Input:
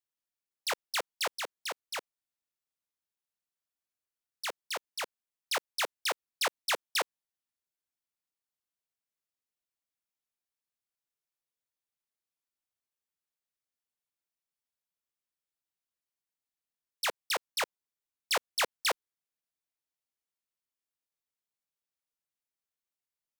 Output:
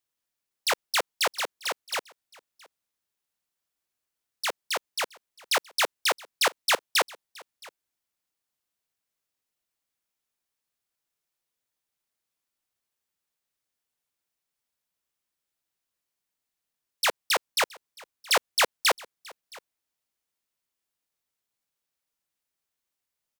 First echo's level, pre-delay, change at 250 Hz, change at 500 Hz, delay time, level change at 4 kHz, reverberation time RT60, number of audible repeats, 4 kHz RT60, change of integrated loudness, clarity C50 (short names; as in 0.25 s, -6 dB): -23.5 dB, none, +7.0 dB, +7.0 dB, 0.67 s, +7.0 dB, none, 1, none, +7.0 dB, none